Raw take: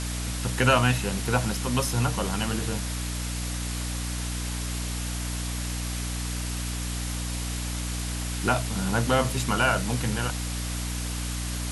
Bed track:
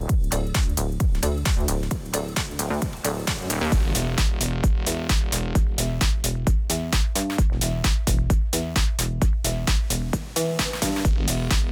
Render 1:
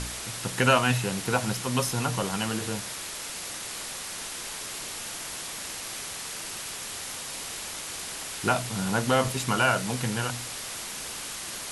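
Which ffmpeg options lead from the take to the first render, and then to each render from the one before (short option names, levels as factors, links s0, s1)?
-af "bandreject=f=60:t=h:w=4,bandreject=f=120:t=h:w=4,bandreject=f=180:t=h:w=4,bandreject=f=240:t=h:w=4,bandreject=f=300:t=h:w=4"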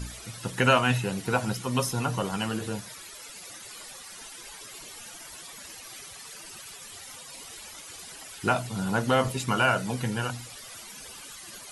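-af "afftdn=nr=14:nf=-37"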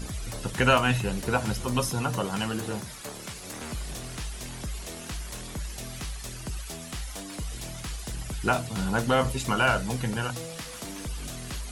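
-filter_complex "[1:a]volume=0.168[s0];[0:a][s0]amix=inputs=2:normalize=0"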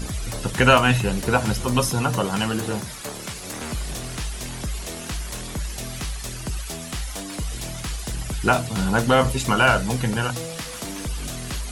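-af "volume=2"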